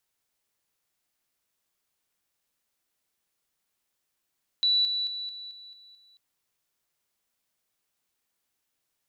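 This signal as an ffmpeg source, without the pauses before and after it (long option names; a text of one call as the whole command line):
ffmpeg -f lavfi -i "aevalsrc='pow(10,(-20-6*floor(t/0.22))/20)*sin(2*PI*3950*t)':duration=1.54:sample_rate=44100" out.wav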